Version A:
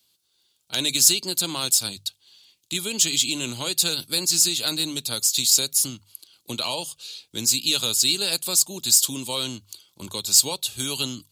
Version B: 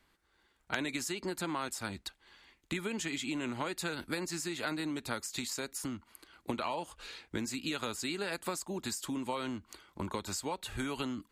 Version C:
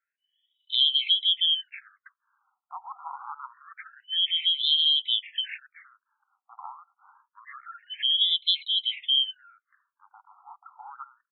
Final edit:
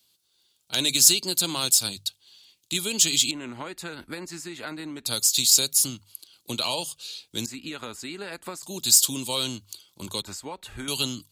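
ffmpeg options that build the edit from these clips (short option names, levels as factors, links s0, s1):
-filter_complex "[1:a]asplit=3[s0][s1][s2];[0:a]asplit=4[s3][s4][s5][s6];[s3]atrim=end=3.312[s7];[s0]atrim=start=3.308:end=5.062[s8];[s4]atrim=start=5.058:end=7.462[s9];[s1]atrim=start=7.458:end=8.632[s10];[s5]atrim=start=8.628:end=10.222[s11];[s2]atrim=start=10.218:end=10.882[s12];[s6]atrim=start=10.878[s13];[s7][s8]acrossfade=d=0.004:c1=hsin:c2=hsin[s14];[s14][s9]acrossfade=d=0.004:c1=hsin:c2=hsin[s15];[s15][s10]acrossfade=d=0.004:c1=hsin:c2=hsin[s16];[s16][s11]acrossfade=d=0.004:c1=hsin:c2=hsin[s17];[s17][s12]acrossfade=d=0.004:c1=hsin:c2=hsin[s18];[s18][s13]acrossfade=d=0.004:c1=hsin:c2=hsin"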